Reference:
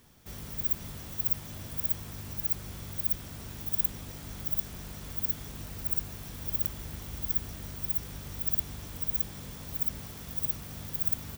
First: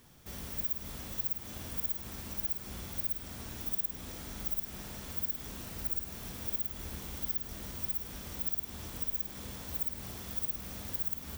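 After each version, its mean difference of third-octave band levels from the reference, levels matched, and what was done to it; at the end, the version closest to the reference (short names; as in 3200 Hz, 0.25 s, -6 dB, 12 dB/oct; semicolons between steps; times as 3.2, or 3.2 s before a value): 3.5 dB: notches 50/100/150 Hz; compressor 4:1, threshold -30 dBFS, peak gain reduction 9 dB; flutter echo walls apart 8.8 m, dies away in 0.4 s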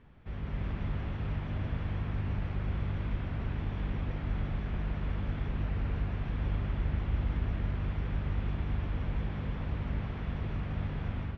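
11.0 dB: LPF 2600 Hz 24 dB/oct; low shelf 88 Hz +9.5 dB; AGC gain up to 5.5 dB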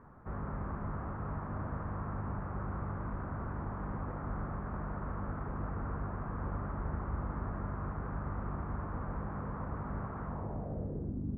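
16.0 dB: Schroeder reverb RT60 3.8 s, combs from 29 ms, DRR 10 dB; low-pass sweep 1200 Hz -> 280 Hz, 10.25–11.23; LPF 1800 Hz 24 dB/oct; gain +4.5 dB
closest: first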